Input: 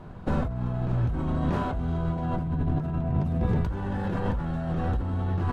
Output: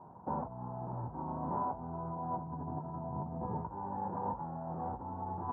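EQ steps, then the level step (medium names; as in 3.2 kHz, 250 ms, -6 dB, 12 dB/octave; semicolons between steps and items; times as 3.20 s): high-pass 130 Hz 12 dB/octave; four-pole ladder low-pass 960 Hz, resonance 80%; 0.0 dB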